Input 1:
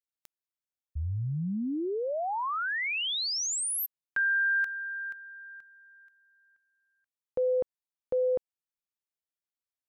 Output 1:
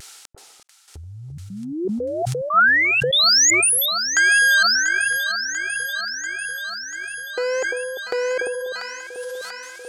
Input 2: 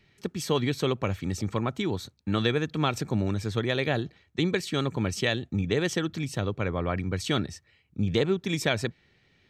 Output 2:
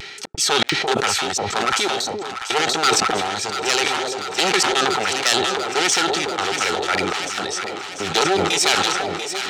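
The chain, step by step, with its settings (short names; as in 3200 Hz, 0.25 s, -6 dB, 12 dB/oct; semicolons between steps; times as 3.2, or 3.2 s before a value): one-sided fold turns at -25 dBFS; weighting filter ITU-R 468; in parallel at -2 dB: upward compressor 4:1, threshold -30 dBFS; on the sum: soft clip -6.5 dBFS; small resonant body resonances 400/780/1300 Hz, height 12 dB, ringing for 25 ms; vibrato 1.2 Hz 53 cents; step gate "xx.xx..xxxx.x" 120 bpm -60 dB; on a send: echo with dull and thin repeats by turns 0.345 s, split 810 Hz, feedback 84%, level -8 dB; on the sum: sustainer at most 22 dB/s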